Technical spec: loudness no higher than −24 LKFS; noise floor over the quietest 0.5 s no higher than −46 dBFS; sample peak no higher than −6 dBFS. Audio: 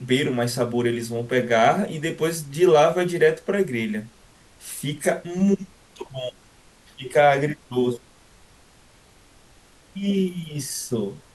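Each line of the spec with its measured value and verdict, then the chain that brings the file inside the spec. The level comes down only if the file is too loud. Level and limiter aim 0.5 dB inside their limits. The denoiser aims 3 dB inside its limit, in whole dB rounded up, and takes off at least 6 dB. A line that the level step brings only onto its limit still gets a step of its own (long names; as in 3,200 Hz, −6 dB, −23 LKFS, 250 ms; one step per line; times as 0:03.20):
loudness −22.5 LKFS: out of spec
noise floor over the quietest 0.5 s −53 dBFS: in spec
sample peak −5.5 dBFS: out of spec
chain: level −2 dB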